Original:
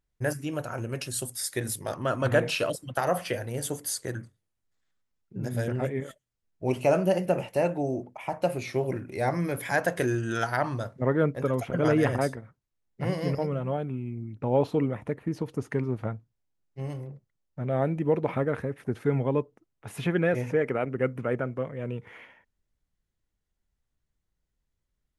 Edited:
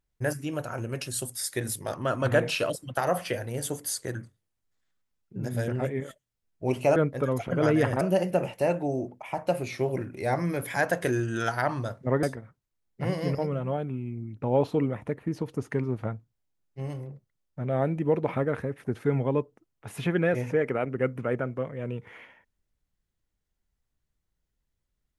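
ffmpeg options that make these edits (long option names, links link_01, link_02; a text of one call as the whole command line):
ffmpeg -i in.wav -filter_complex "[0:a]asplit=4[link_01][link_02][link_03][link_04];[link_01]atrim=end=6.962[link_05];[link_02]atrim=start=11.178:end=12.232[link_06];[link_03]atrim=start=6.958:end=11.182[link_07];[link_04]atrim=start=12.228[link_08];[link_05][link_06]acrossfade=duration=0.004:curve1=hsin:curve2=hsin[link_09];[link_09][link_07]acrossfade=duration=0.004:curve1=hsin:curve2=hsin[link_10];[link_10][link_08]acrossfade=duration=0.004:curve1=hsin:curve2=hsin" out.wav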